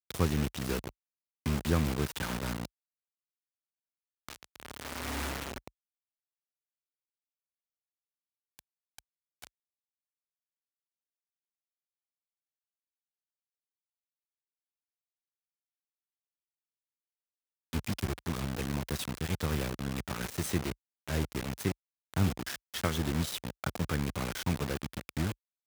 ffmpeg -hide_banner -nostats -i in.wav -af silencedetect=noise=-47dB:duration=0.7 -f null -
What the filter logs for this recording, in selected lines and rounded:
silence_start: 2.66
silence_end: 4.29 | silence_duration: 1.63
silence_start: 5.68
silence_end: 8.59 | silence_duration: 2.91
silence_start: 9.47
silence_end: 17.73 | silence_duration: 8.26